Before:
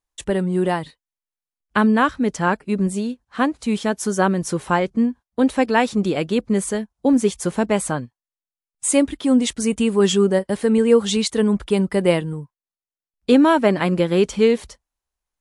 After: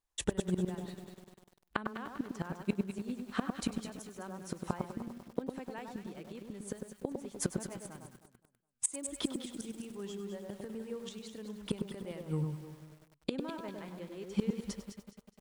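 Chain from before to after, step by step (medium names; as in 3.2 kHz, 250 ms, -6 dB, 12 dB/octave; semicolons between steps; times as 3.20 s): inverted gate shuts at -15 dBFS, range -25 dB; echo whose repeats swap between lows and highs 104 ms, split 1.4 kHz, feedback 53%, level -4 dB; bit-crushed delay 99 ms, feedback 80%, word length 8-bit, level -12.5 dB; trim -3.5 dB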